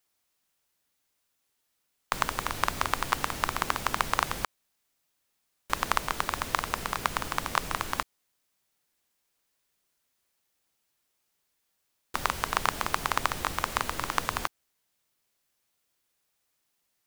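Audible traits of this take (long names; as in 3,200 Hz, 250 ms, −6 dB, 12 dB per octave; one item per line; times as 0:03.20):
background noise floor −77 dBFS
spectral slope −3.0 dB per octave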